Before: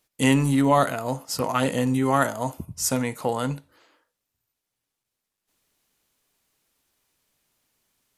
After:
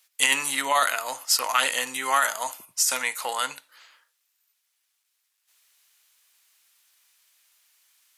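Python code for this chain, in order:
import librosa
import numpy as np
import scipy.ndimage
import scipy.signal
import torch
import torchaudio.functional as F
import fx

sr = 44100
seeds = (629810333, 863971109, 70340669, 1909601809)

y = scipy.signal.sosfilt(scipy.signal.butter(2, 1500.0, 'highpass', fs=sr, output='sos'), x)
y = fx.over_compress(y, sr, threshold_db=-28.0, ratio=-1.0)
y = F.gain(torch.from_numpy(y), 8.5).numpy()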